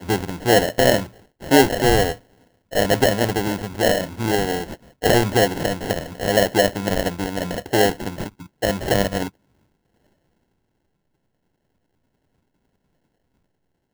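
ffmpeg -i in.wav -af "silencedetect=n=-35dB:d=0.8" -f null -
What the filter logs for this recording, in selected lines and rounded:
silence_start: 9.29
silence_end: 13.93 | silence_duration: 4.64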